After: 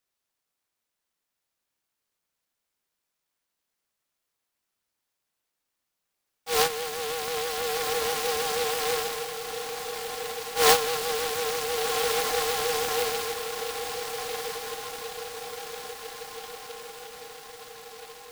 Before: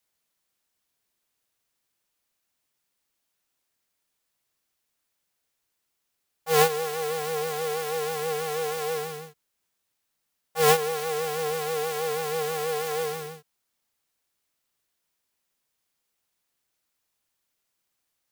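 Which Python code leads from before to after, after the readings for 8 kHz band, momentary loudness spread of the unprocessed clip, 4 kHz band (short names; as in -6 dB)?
+4.5 dB, 11 LU, +6.5 dB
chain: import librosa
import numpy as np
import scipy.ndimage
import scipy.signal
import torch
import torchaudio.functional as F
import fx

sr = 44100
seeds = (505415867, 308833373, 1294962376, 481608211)

p1 = scipy.signal.sosfilt(scipy.signal.butter(4, 260.0, 'highpass', fs=sr, output='sos'), x)
p2 = fx.low_shelf(p1, sr, hz=490.0, db=-9.0)
p3 = fx.rider(p2, sr, range_db=10, speed_s=2.0)
p4 = p3 + fx.echo_diffused(p3, sr, ms=1489, feedback_pct=60, wet_db=-7, dry=0)
p5 = fx.noise_mod_delay(p4, sr, seeds[0], noise_hz=2900.0, depth_ms=0.11)
y = F.gain(torch.from_numpy(p5), 2.0).numpy()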